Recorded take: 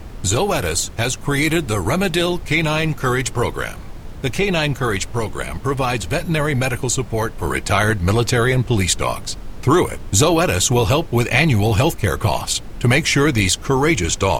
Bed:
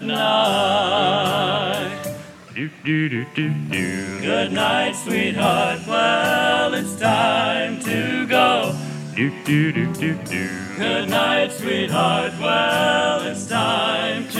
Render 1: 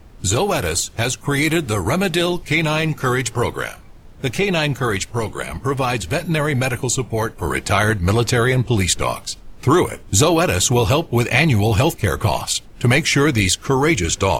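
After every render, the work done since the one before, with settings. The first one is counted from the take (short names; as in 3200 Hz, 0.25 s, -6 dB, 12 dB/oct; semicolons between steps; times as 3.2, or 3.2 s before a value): noise print and reduce 10 dB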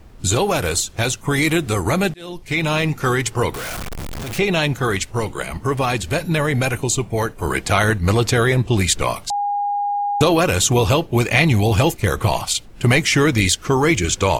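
2.14–2.74 fade in; 3.54–4.38 infinite clipping; 9.3–10.21 bleep 815 Hz -18 dBFS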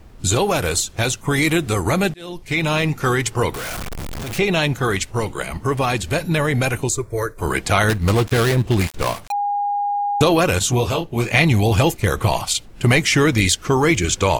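6.89–7.38 fixed phaser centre 780 Hz, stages 6; 7.89–9.32 switching dead time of 0.19 ms; 10.59–11.34 detuned doubles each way 40 cents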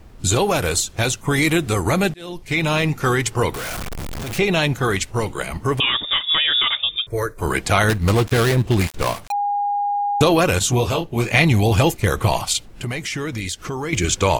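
5.8–7.07 inverted band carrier 3600 Hz; 12.68–13.93 compressor 3:1, threshold -26 dBFS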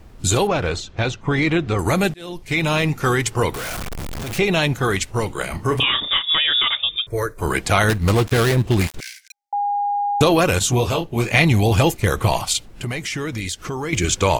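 0.47–1.79 air absorption 180 m; 5.37–6.22 doubler 33 ms -8 dB; 9–9.53 rippled Chebyshev high-pass 1500 Hz, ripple 9 dB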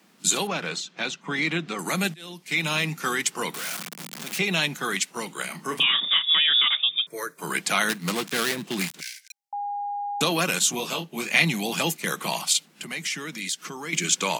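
steep high-pass 160 Hz 72 dB/oct; bell 460 Hz -12 dB 2.8 oct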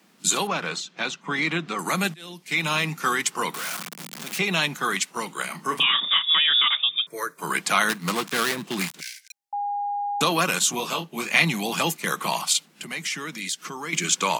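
dynamic EQ 1100 Hz, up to +6 dB, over -44 dBFS, Q 1.8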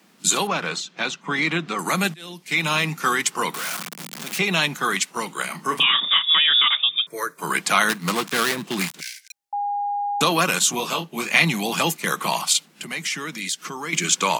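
gain +2.5 dB; limiter -1 dBFS, peak gain reduction 1 dB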